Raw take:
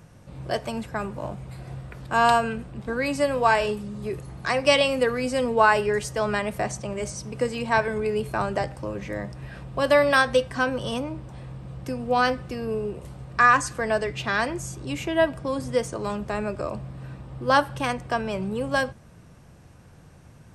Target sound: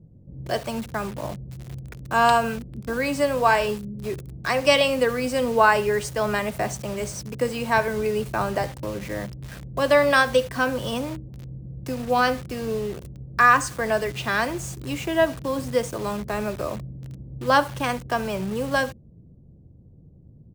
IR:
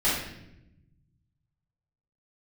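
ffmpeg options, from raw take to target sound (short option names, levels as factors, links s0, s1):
-filter_complex "[0:a]aecho=1:1:70:0.106,acrossover=split=450[s0][s1];[s1]acrusher=bits=6:mix=0:aa=0.000001[s2];[s0][s2]amix=inputs=2:normalize=0,volume=1.12"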